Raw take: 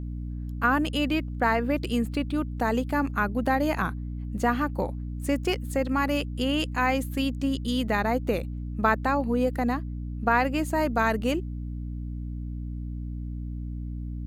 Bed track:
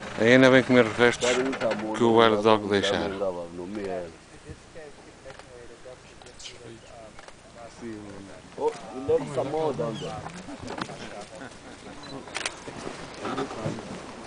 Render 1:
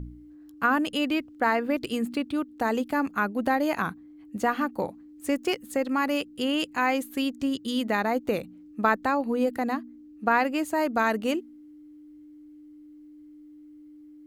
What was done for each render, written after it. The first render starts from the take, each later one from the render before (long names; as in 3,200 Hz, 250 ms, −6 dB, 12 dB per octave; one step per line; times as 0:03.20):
hum removal 60 Hz, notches 4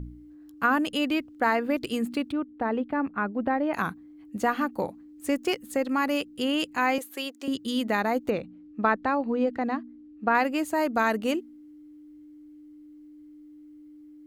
0:02.32–0:03.74: high-frequency loss of the air 490 metres
0:06.98–0:07.48: high-pass filter 370 Hz 24 dB per octave
0:08.30–0:10.35: high-frequency loss of the air 160 metres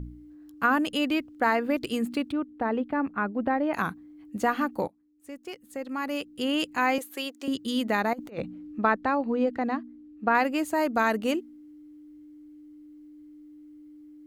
0:04.88–0:06.57: fade in quadratic, from −19 dB
0:08.13–0:08.79: compressor whose output falls as the input rises −33 dBFS, ratio −0.5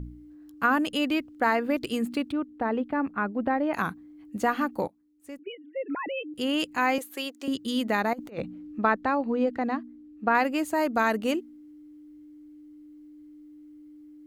0:05.39–0:06.34: three sine waves on the formant tracks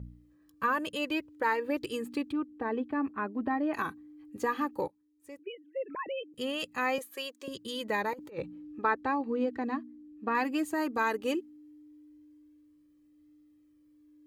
flanger 0.15 Hz, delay 1.5 ms, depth 1.4 ms, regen −31%
notch comb filter 710 Hz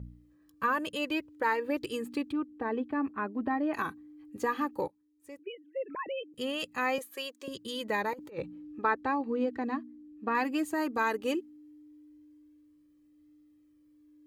no processing that can be heard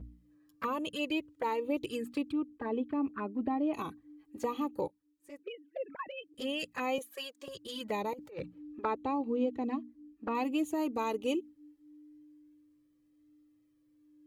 flanger swept by the level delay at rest 8.5 ms, full sweep at −29.5 dBFS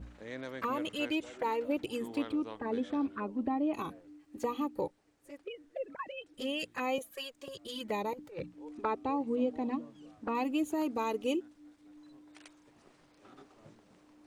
mix in bed track −26 dB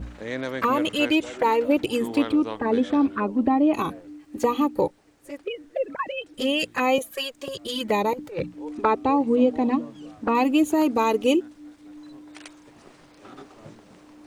level +12 dB